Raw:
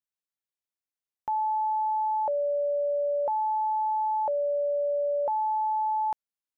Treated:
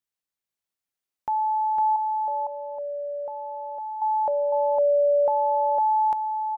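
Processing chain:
0:01.96–0:04.02: downward expander −19 dBFS
single-tap delay 506 ms −3.5 dB
level +3 dB

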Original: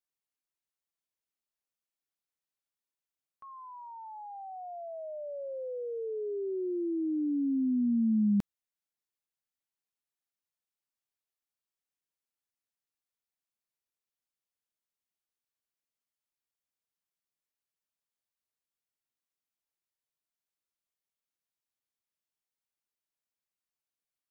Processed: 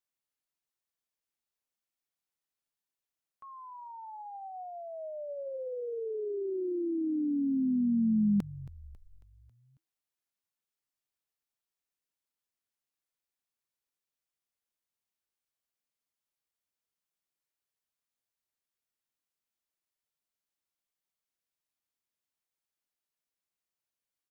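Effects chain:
echo with shifted repeats 273 ms, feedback 54%, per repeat −67 Hz, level −18 dB

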